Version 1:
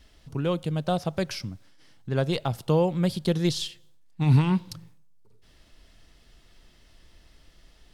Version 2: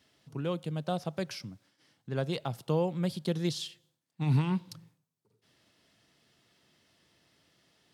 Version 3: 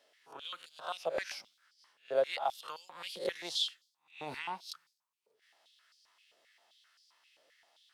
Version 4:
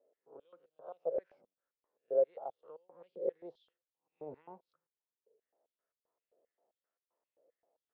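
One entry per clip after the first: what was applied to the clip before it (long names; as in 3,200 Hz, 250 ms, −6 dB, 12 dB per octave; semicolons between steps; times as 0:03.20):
high-pass filter 110 Hz 24 dB per octave; level −6.5 dB
peak hold with a rise ahead of every peak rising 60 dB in 0.33 s; high-pass on a step sequencer 7.6 Hz 550–4,800 Hz; level −4.5 dB
low-pass with resonance 490 Hz, resonance Q 3.4; level −7 dB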